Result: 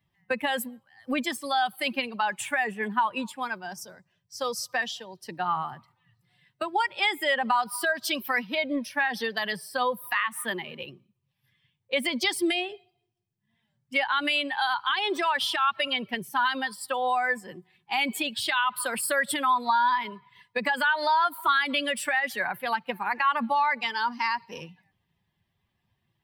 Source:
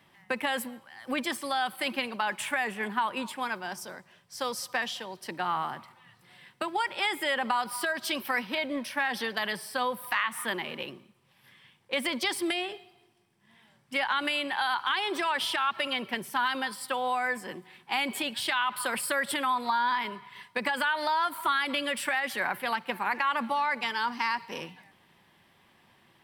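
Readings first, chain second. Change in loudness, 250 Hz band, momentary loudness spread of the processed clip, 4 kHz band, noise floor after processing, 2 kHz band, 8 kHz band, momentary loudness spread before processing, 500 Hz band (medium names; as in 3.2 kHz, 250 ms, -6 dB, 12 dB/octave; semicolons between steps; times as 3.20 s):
+3.0 dB, +2.5 dB, 10 LU, +2.0 dB, -78 dBFS, +2.5 dB, +2.5 dB, 9 LU, +3.0 dB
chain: expander on every frequency bin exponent 1.5; trim +6 dB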